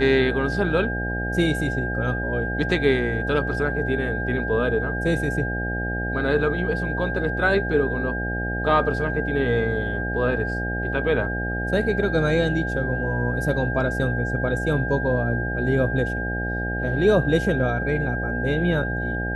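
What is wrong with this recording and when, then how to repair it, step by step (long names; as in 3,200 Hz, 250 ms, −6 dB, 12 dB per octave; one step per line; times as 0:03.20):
mains buzz 60 Hz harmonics 14 −28 dBFS
whistle 1,600 Hz −28 dBFS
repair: hum removal 60 Hz, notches 14
notch filter 1,600 Hz, Q 30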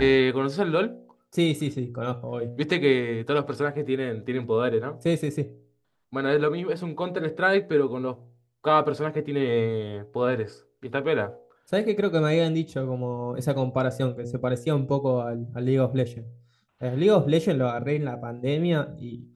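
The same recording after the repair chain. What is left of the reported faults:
none of them is left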